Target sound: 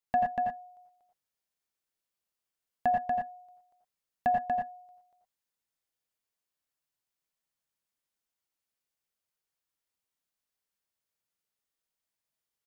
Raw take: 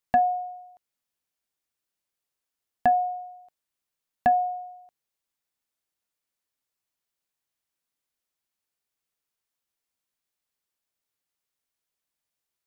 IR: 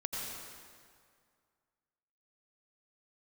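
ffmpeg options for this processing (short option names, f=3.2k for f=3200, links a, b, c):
-filter_complex "[0:a]aecho=1:1:238:0.631[a];[1:a]atrim=start_sample=2205,afade=t=out:st=0.17:d=0.01,atrim=end_sample=7938[b];[a][b]afir=irnorm=-1:irlink=0,volume=-4.5dB"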